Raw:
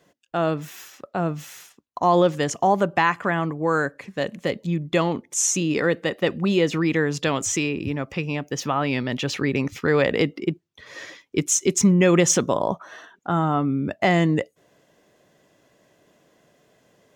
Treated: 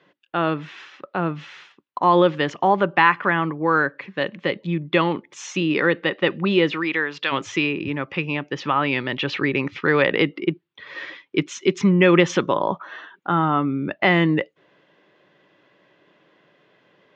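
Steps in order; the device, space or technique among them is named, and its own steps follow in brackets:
kitchen radio (loudspeaker in its box 200–3,600 Hz, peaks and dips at 240 Hz −9 dB, 460 Hz −5 dB, 680 Hz −9 dB)
0:06.72–0:07.31: high-pass filter 480 Hz → 1,300 Hz 6 dB per octave
level +5.5 dB

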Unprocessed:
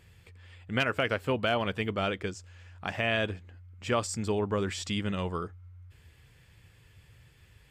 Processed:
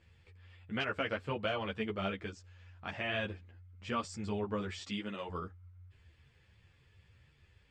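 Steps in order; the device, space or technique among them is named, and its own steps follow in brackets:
0:04.78–0:05.28: high-pass filter 140 Hz → 310 Hz 12 dB per octave
string-machine ensemble chorus (string-ensemble chorus; low-pass filter 5,400 Hz 12 dB per octave)
level −3.5 dB

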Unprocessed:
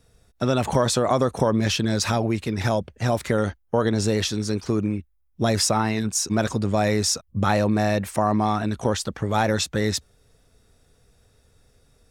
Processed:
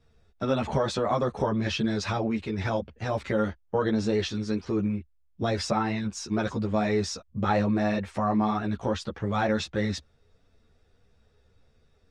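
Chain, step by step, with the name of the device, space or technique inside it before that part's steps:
string-machine ensemble chorus (string-ensemble chorus; low-pass filter 4,100 Hz 12 dB per octave)
level −1.5 dB

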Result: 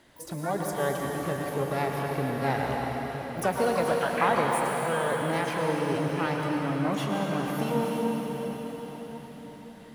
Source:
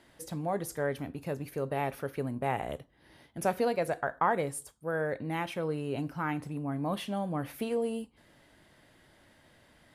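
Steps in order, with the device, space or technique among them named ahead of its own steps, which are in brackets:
shimmer-style reverb (pitch-shifted copies added +12 semitones −9 dB; convolution reverb RT60 5.4 s, pre-delay 100 ms, DRR −1 dB)
level +1.5 dB

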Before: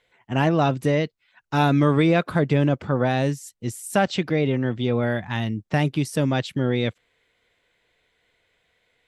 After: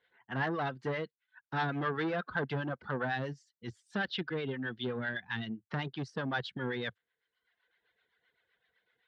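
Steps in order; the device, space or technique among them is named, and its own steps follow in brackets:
reverb reduction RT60 0.9 s
guitar amplifier with harmonic tremolo (two-band tremolo in antiphase 7.8 Hz, depth 70%, crossover 640 Hz; soft clipping −22 dBFS, distortion −11 dB; loudspeaker in its box 100–4,200 Hz, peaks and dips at 100 Hz −9 dB, 160 Hz −5 dB, 290 Hz −6 dB, 600 Hz −6 dB, 1,600 Hz +9 dB, 2,400 Hz −7 dB)
0:03.96–0:05.57: drawn EQ curve 430 Hz 0 dB, 810 Hz −6 dB, 3,500 Hz +3 dB, 6,600 Hz −2 dB
level −3 dB

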